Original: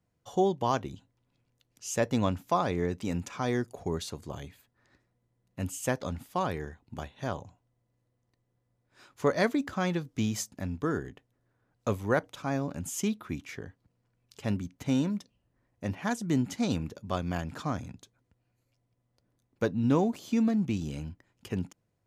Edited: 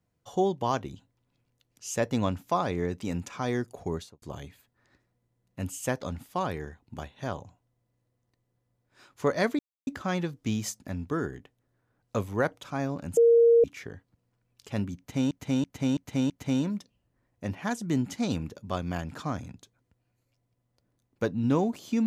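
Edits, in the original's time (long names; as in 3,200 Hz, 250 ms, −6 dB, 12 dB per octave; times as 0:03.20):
0:03.92–0:04.22: fade out and dull
0:09.59: splice in silence 0.28 s
0:12.89–0:13.36: beep over 466 Hz −15 dBFS
0:14.70–0:15.03: repeat, 5 plays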